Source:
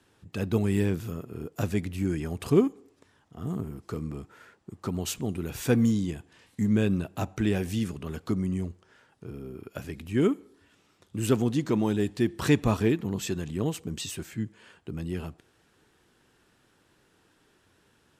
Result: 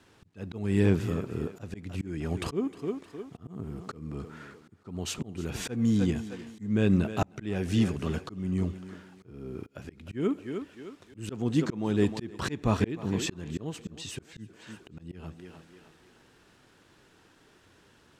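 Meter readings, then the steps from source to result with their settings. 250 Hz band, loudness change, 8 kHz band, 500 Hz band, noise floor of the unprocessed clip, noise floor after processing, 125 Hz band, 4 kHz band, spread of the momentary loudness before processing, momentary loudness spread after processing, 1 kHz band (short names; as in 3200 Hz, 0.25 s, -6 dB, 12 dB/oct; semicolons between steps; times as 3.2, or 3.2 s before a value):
-2.0 dB, -2.0 dB, -3.0 dB, -3.5 dB, -66 dBFS, -61 dBFS, -1.5 dB, -1.0 dB, 16 LU, 20 LU, -1.0 dB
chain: on a send: thinning echo 0.309 s, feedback 47%, high-pass 250 Hz, level -14 dB; on the sum: bit-crush 11-bit; air absorption 52 m; auto swell 0.387 s; gain +4.5 dB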